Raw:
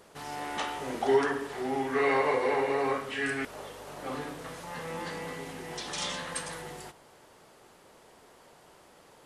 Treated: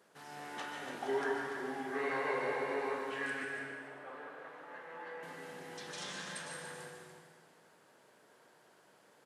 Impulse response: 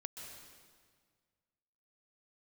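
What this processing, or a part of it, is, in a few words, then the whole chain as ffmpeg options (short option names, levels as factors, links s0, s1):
stadium PA: -filter_complex "[0:a]asettb=1/sr,asplit=3[s0][s1][s2];[s0]atrim=end=3.434[s3];[s1]atrim=start=3.43:end=5.23,asetpts=PTS-STARTPTS,afade=t=in:d=0.004:c=qsin,afade=t=out:st=1.796:d=0.004:c=qsin,acrossover=split=340 2700:gain=0.141 1 0.112[s4][s5][s6];[s4][s5][s6]amix=inputs=3:normalize=0[s7];[s2]atrim=start=5.226[s8];[s3][s7]acrossfade=d=0.004:c1=hsin:c2=qsin[s9];[s9][s8]acrossfade=d=0.004:c1=qsin:c2=hsin,highpass=f=130:w=0.5412,highpass=f=130:w=1.3066,equalizer=f=1600:t=o:w=0.31:g=7,aecho=1:1:148.7|288.6:0.282|0.282[s10];[1:a]atrim=start_sample=2205[s11];[s10][s11]afir=irnorm=-1:irlink=0,volume=0.473"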